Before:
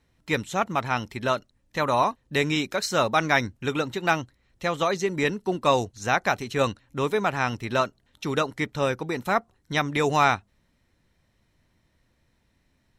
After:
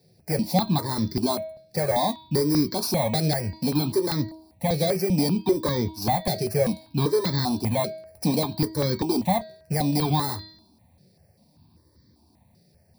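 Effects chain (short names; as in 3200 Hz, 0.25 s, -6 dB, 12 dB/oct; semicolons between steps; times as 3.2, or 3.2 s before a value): FFT order left unsorted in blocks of 16 samples; low shelf 240 Hz -9.5 dB; notch 1400 Hz, Q 5.6; de-hum 318.6 Hz, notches 15; in parallel at -1.5 dB: limiter -14.5 dBFS, peak gain reduction 9 dB; on the sum: compressor, threshold -20 dBFS, peak gain reduction 8 dB; soft clip -23.5 dBFS, distortion -9 dB; reverb, pre-delay 3 ms, DRR 10.5 dB; step phaser 5.1 Hz 270–2700 Hz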